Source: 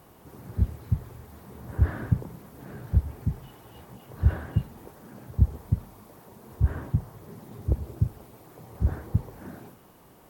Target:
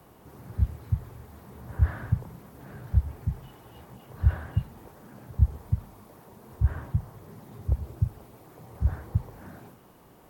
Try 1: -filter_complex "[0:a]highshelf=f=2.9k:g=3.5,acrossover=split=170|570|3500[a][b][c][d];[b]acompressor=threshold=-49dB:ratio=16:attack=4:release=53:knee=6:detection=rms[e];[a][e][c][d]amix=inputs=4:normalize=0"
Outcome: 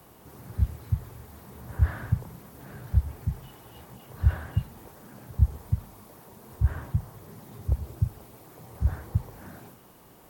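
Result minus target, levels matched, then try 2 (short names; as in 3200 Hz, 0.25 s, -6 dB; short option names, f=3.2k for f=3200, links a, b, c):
8000 Hz band +6.0 dB
-filter_complex "[0:a]highshelf=f=2.9k:g=-3,acrossover=split=170|570|3500[a][b][c][d];[b]acompressor=threshold=-49dB:ratio=16:attack=4:release=53:knee=6:detection=rms[e];[a][e][c][d]amix=inputs=4:normalize=0"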